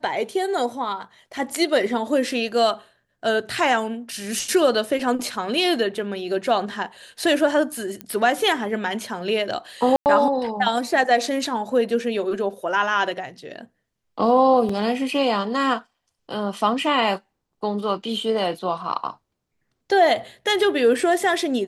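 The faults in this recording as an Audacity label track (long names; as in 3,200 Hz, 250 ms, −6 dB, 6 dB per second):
8.010000	8.010000	click −15 dBFS
9.960000	10.060000	drop-out 99 ms
14.690000	14.690000	drop-out 4.2 ms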